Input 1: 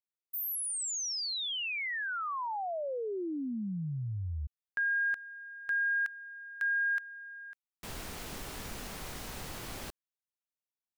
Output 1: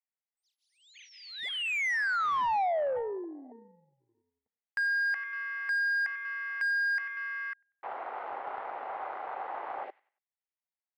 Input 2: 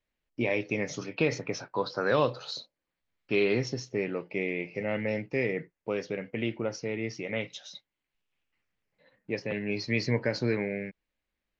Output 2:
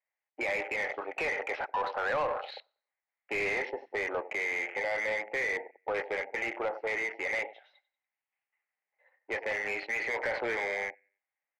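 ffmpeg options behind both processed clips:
ffmpeg -i in.wav -filter_complex "[0:a]asplit=2[link_01][link_02];[link_02]aecho=0:1:94|188|282:0.119|0.0404|0.0137[link_03];[link_01][link_03]amix=inputs=2:normalize=0,afwtdn=0.00708,highpass=frequency=440:width=0.5412,highpass=frequency=440:width=1.3066,equalizer=frequency=450:width_type=q:width=4:gain=-3,equalizer=frequency=800:width_type=q:width=4:gain=9,equalizer=frequency=2000:width_type=q:width=4:gain=9,lowpass=frequency=2800:width=0.5412,lowpass=frequency=2800:width=1.3066,acompressor=threshold=-32dB:ratio=3:attack=3.1:release=41:knee=1:detection=rms,asplit=2[link_04][link_05];[link_05]highpass=frequency=720:poles=1,volume=18dB,asoftclip=type=tanh:threshold=-21dB[link_06];[link_04][link_06]amix=inputs=2:normalize=0,lowpass=frequency=1900:poles=1,volume=-6dB" out.wav

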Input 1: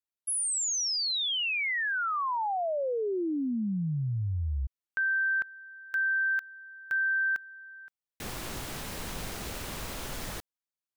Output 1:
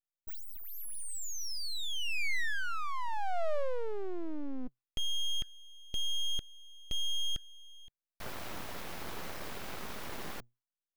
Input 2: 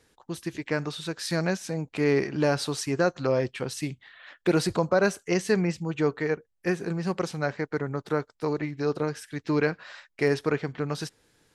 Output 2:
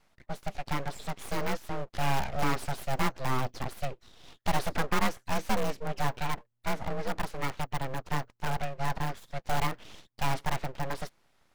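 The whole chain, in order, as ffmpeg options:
ffmpeg -i in.wav -filter_complex "[0:a]equalizer=frequency=250:width_type=o:width=1:gain=7,equalizer=frequency=1000:width_type=o:width=1:gain=6,equalizer=frequency=8000:width_type=o:width=1:gain=-8,asplit=2[link_01][link_02];[link_02]aeval=exprs='(mod(5.96*val(0)+1,2)-1)/5.96':channel_layout=same,volume=-8.5dB[link_03];[link_01][link_03]amix=inputs=2:normalize=0,afreqshift=60,aeval=exprs='abs(val(0))':channel_layout=same,volume=-6.5dB" out.wav

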